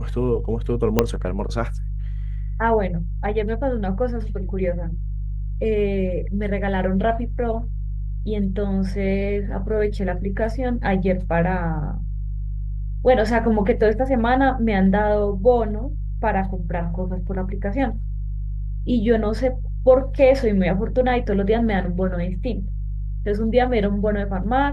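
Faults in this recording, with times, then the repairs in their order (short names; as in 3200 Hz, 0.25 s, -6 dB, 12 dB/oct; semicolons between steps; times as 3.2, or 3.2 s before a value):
hum 50 Hz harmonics 3 -26 dBFS
0.99 pop -1 dBFS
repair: de-click; de-hum 50 Hz, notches 3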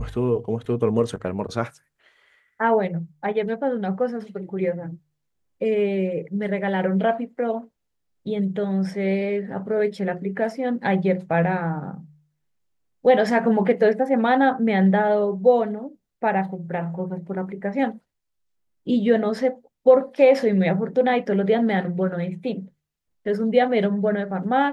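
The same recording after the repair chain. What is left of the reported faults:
0.99 pop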